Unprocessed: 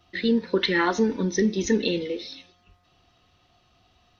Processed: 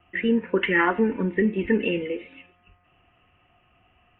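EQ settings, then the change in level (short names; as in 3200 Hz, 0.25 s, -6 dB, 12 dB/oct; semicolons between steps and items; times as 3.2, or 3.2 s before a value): steep low-pass 2900 Hz 96 dB/oct; high shelf 2000 Hz +8 dB; 0.0 dB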